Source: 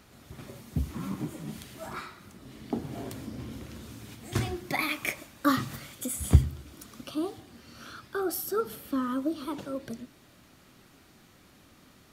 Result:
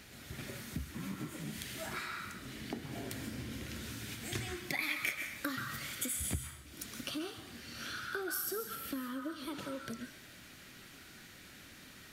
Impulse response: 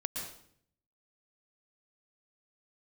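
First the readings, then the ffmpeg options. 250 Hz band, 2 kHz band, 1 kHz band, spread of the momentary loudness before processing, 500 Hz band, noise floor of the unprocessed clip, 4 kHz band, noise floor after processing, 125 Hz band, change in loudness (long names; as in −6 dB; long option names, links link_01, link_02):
−9.5 dB, −1.5 dB, −9.0 dB, 19 LU, −9.5 dB, −58 dBFS, −0.5 dB, −55 dBFS, −13.5 dB, −7.5 dB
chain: -filter_complex "[0:a]acompressor=threshold=-39dB:ratio=4,asplit=2[link_01][link_02];[link_02]highpass=frequency=1600:width_type=q:width=2[link_03];[1:a]atrim=start_sample=2205,asetrate=37485,aresample=44100[link_04];[link_03][link_04]afir=irnorm=-1:irlink=0,volume=-2.5dB[link_05];[link_01][link_05]amix=inputs=2:normalize=0"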